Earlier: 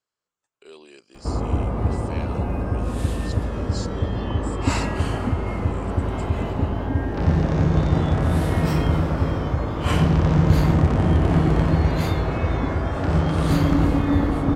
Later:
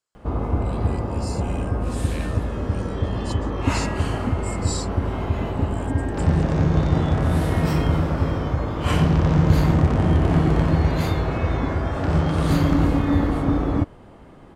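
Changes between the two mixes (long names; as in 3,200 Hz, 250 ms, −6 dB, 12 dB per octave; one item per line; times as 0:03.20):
speech: remove high-frequency loss of the air 64 metres
background: entry −1.00 s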